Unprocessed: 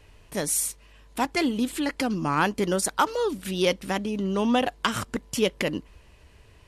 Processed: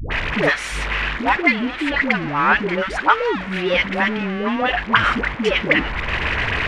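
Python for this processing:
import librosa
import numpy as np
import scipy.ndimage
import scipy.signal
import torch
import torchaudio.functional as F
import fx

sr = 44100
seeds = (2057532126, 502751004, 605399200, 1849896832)

y = x + 0.5 * 10.0 ** (-24.5 / 20.0) * np.sign(x)
y = scipy.signal.sosfilt(scipy.signal.butter(2, 2600.0, 'lowpass', fs=sr, output='sos'), y)
y = fx.rider(y, sr, range_db=5, speed_s=0.5)
y = fx.peak_eq(y, sr, hz=2000.0, db=14.5, octaves=1.8)
y = fx.dispersion(y, sr, late='highs', ms=113.0, hz=570.0)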